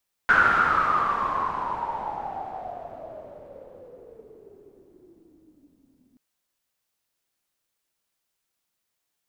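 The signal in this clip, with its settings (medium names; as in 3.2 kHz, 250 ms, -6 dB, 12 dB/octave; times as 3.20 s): swept filtered noise white, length 5.88 s lowpass, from 1.5 kHz, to 250 Hz, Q 11, exponential, gain ramp -36.5 dB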